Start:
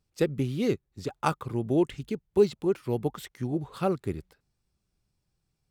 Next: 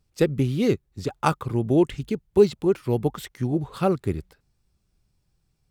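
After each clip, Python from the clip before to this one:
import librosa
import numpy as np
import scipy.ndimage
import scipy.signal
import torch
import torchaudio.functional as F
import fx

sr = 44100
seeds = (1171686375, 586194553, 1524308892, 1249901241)

y = fx.low_shelf(x, sr, hz=95.0, db=6.0)
y = y * 10.0 ** (4.5 / 20.0)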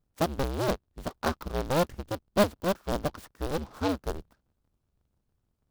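y = fx.cycle_switch(x, sr, every=2, mode='inverted')
y = fx.band_shelf(y, sr, hz=3300.0, db=-12.5, octaves=1.7)
y = fx.noise_mod_delay(y, sr, seeds[0], noise_hz=3100.0, depth_ms=0.045)
y = y * 10.0 ** (-6.5 / 20.0)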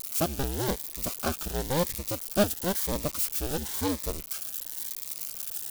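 y = x + 0.5 * 10.0 ** (-22.0 / 20.0) * np.diff(np.sign(x), prepend=np.sign(x[:1]))
y = fx.notch_cascade(y, sr, direction='rising', hz=0.97)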